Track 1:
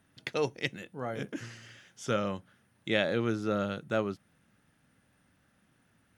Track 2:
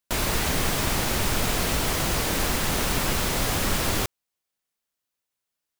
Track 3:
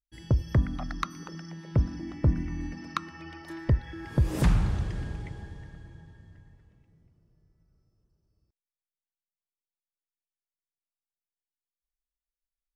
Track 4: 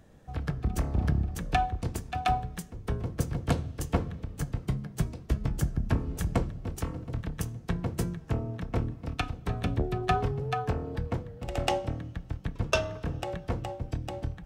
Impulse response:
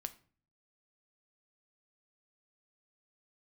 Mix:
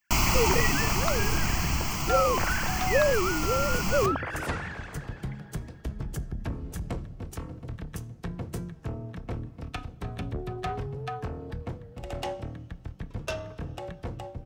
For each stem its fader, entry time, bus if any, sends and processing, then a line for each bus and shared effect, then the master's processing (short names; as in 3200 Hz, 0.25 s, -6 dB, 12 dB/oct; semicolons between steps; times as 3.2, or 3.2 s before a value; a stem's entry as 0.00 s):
-8.0 dB, 0.00 s, no send, sine-wave speech; band shelf 1100 Hz +12.5 dB 2.7 oct; sustainer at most 26 dB/s
+3.0 dB, 0.00 s, send -6.5 dB, fixed phaser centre 2500 Hz, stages 8; auto duck -17 dB, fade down 1.95 s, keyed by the first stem
-6.0 dB, 0.05 s, send -5.5 dB, HPF 430 Hz 12 dB/oct; spectral gate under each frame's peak -30 dB strong
-2.5 dB, 0.55 s, no send, soft clip -23 dBFS, distortion -13 dB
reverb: on, RT60 0.45 s, pre-delay 6 ms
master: dry